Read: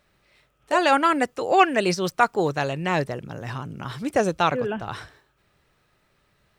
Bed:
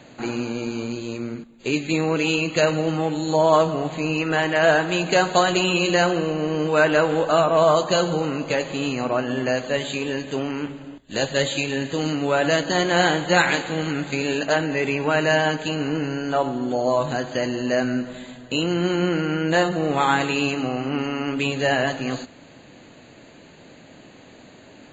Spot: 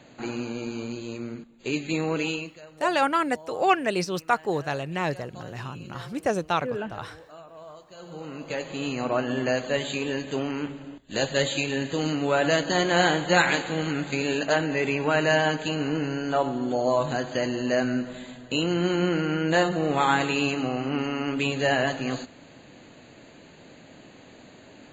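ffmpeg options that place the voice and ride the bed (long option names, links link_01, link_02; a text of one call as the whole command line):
ffmpeg -i stem1.wav -i stem2.wav -filter_complex "[0:a]adelay=2100,volume=-4dB[link_01];[1:a]volume=20.5dB,afade=type=out:start_time=2.21:duration=0.37:silence=0.0707946,afade=type=in:start_time=7.96:duration=1.22:silence=0.0530884[link_02];[link_01][link_02]amix=inputs=2:normalize=0" out.wav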